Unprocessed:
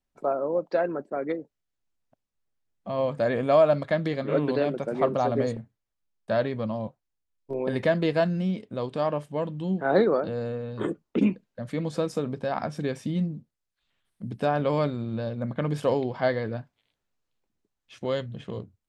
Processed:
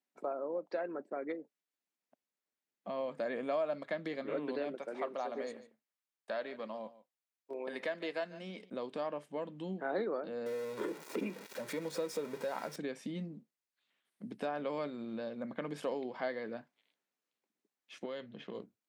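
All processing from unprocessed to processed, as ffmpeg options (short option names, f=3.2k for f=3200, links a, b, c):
-filter_complex "[0:a]asettb=1/sr,asplit=3[a][b][c];[a]atrim=end=4.754[d];[b]atrim=start=4.75:end=8.7,asetpts=PTS-STARTPTS,afade=t=in:d=0.004:c=qsin,afade=t=out:st=3.946:d=0.004:c=qsin,highpass=f=570:p=1,aecho=1:1:146:0.112,atrim=end_sample=174195[e];[c]atrim=start=8.696[f];[d][e]acrossfade=d=0.004:c1=hsin:c2=qsin[g];[g][f]acrossfade=d=0.004:c1=qsin:c2=hsin,asettb=1/sr,asplit=3[h][i][j];[h]atrim=end=10.464[k];[i]atrim=start=10.46:end=12.76,asetpts=PTS-STARTPTS,afade=t=in:d=0.004:c=qsin,afade=t=out:st=2.296:d=0.004:c=qsin,aeval=exprs='val(0)+0.5*0.02*sgn(val(0))':c=same,bandreject=f=3k:w=13,aecho=1:1:2.1:0.44,atrim=end_sample=101430[l];[j]atrim=start=12.756[m];[k][l]acrossfade=d=0.004:c1=hsin:c2=qsin[n];[n][m]acrossfade=d=0.004:c1=qsin:c2=hsin,asettb=1/sr,asplit=3[o][p][q];[o]atrim=end=18.054[r];[p]atrim=start=18.05:end=18.55,asetpts=PTS-STARTPTS,afade=t=in:d=0.004:c=qsin,afade=t=out:st=0.496:d=0.004:c=qsin,lowpass=f=5.7k:w=0.5412,lowpass=f=5.7k:w=1.3066,acompressor=threshold=-32dB:ratio=2.5:attack=3.2:release=140:knee=1:detection=peak[s];[q]atrim=start=18.546[t];[r][s]acrossfade=d=0.004:c1=hsin:c2=qsin[u];[u][t]acrossfade=d=0.004:c1=qsin:c2=hsin,highpass=f=210:w=0.5412,highpass=f=210:w=1.3066,equalizer=f=2.1k:w=2.1:g=3.5,acompressor=threshold=-35dB:ratio=2,volume=-4.5dB"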